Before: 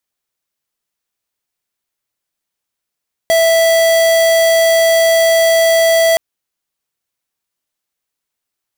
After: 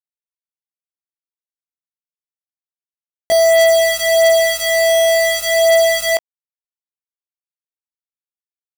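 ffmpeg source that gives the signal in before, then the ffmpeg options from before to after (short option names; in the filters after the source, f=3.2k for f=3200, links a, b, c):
-f lavfi -i "aevalsrc='0.299*(2*lt(mod(659*t,1),0.5)-1)':d=2.87:s=44100"
-af "flanger=delay=18:depth=2.9:speed=0.3,acrusher=bits=2:mix=0:aa=0.5"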